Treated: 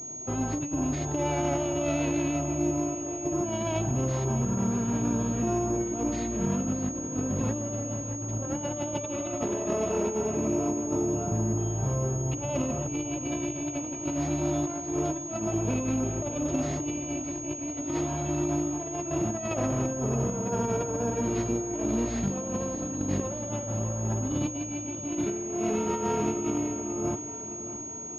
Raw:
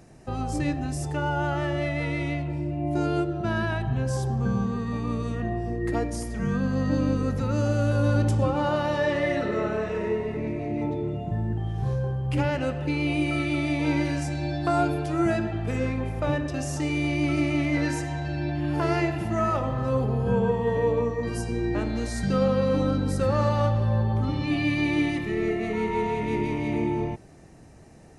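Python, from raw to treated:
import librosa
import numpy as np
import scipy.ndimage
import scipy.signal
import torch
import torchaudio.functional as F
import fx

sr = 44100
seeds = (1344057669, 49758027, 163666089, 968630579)

y = fx.lower_of_two(x, sr, delay_ms=0.33)
y = scipy.signal.sosfilt(scipy.signal.butter(2, 110.0, 'highpass', fs=sr, output='sos'), y)
y = fx.peak_eq(y, sr, hz=1900.0, db=-12.0, octaves=0.76)
y = y + 0.45 * np.pad(y, (int(3.1 * sr / 1000.0), 0))[:len(y)]
y = fx.over_compress(y, sr, threshold_db=-29.0, ratio=-0.5)
y = fx.echo_feedback(y, sr, ms=618, feedback_pct=56, wet_db=-13)
y = fx.pwm(y, sr, carrier_hz=6600.0)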